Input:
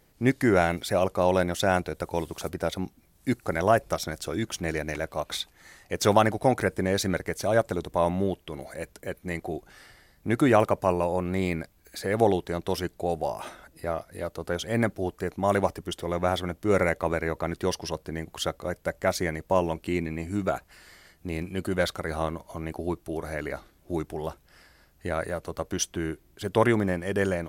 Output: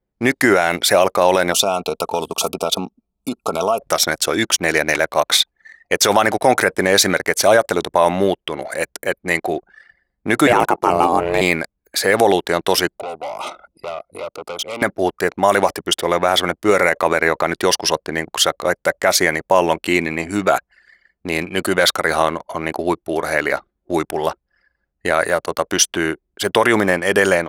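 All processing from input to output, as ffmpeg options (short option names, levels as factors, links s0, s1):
-filter_complex "[0:a]asettb=1/sr,asplit=3[s0][s1][s2];[s0]atrim=end=1.524[s3];[s1]atrim=start=1.52:end=3.82,asetpts=PTS-STARTPTS,afade=t=in:d=0.004:c=qsin,afade=t=out:st=2.296:d=0.004:c=qsin,aecho=1:1:4.5:0.46,atrim=end_sample=101430,acompressor=threshold=0.0501:ratio=16:attack=3.2:release=140:knee=1:detection=peak,asuperstop=centerf=1800:order=12:qfactor=1.8[s4];[s2]atrim=start=3.816[s5];[s3][s4]acrossfade=d=0.004:c1=hsin:c2=qsin[s6];[s6][s5]acrossfade=d=0.004:c1=qsin:c2=hsin,asettb=1/sr,asplit=3[s7][s8][s9];[s7]atrim=end=10.474[s10];[s8]atrim=start=10.47:end=11.41,asetpts=PTS-STARTPTS,afade=t=in:d=0.004:c=qsin,afade=t=out:st=0.936:d=0.004:c=qsin,lowshelf=f=400:g=3.5,aeval=exprs='val(0)*sin(2*PI*250*n/s)':c=same[s11];[s9]atrim=start=11.406[s12];[s10][s11]acrossfade=d=0.004:c1=hsin:c2=qsin[s13];[s13][s12]acrossfade=d=0.004:c1=qsin:c2=hsin,asettb=1/sr,asplit=3[s14][s15][s16];[s14]atrim=end=12.984[s17];[s15]atrim=start=12.98:end=14.82,asetpts=PTS-STARTPTS,afade=t=in:d=0.004:c=qsin,afade=t=out:st=1.836:d=0.004:c=qsin,acrossover=split=280|7000[s18][s19][s20];[s18]acompressor=threshold=0.00398:ratio=4[s21];[s19]acompressor=threshold=0.02:ratio=4[s22];[s20]acompressor=threshold=0.00158:ratio=4[s23];[s21][s22][s23]amix=inputs=3:normalize=0,asoftclip=type=hard:threshold=0.0141,asuperstop=centerf=1700:order=8:qfactor=3[s24];[s16]atrim=start=14.816[s25];[s17][s24]acrossfade=d=0.004:c1=hsin:c2=qsin[s26];[s26][s25]acrossfade=d=0.004:c1=qsin:c2=hsin,anlmdn=0.0631,highpass=f=820:p=1,alimiter=level_in=9.44:limit=0.891:release=50:level=0:latency=1,volume=0.891"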